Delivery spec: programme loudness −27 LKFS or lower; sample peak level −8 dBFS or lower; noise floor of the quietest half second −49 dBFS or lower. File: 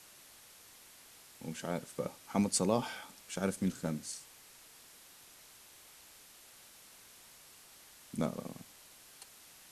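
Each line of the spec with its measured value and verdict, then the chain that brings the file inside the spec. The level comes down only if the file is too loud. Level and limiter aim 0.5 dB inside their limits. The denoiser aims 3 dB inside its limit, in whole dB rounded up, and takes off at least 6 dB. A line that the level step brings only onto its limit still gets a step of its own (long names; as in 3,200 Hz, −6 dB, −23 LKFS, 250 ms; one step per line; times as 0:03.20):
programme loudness −36.5 LKFS: in spec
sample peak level −15.5 dBFS: in spec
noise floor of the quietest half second −58 dBFS: in spec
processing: no processing needed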